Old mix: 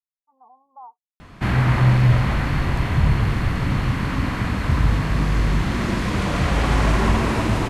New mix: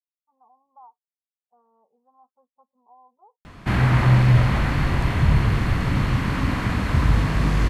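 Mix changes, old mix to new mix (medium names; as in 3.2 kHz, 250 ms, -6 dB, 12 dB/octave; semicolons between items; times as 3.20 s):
speech -6.5 dB; background: entry +2.25 s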